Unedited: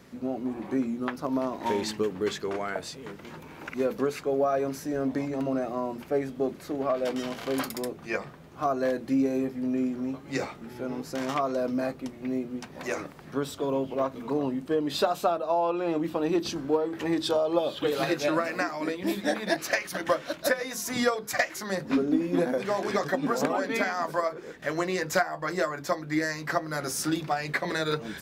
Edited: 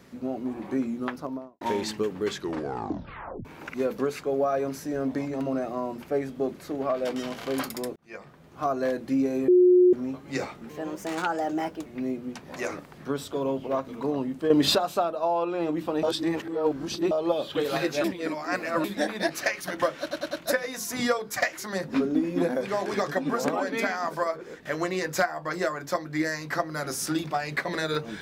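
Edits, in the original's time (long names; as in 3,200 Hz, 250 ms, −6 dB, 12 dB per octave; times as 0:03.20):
0:01.07–0:01.61: fade out and dull
0:02.33: tape stop 1.12 s
0:07.96–0:08.64: fade in
0:09.48–0:09.93: beep over 361 Hz −13.5 dBFS
0:10.69–0:12.13: play speed 123%
0:14.77–0:15.02: clip gain +9 dB
0:16.30–0:17.38: reverse
0:18.31–0:19.11: reverse
0:20.28: stutter 0.10 s, 4 plays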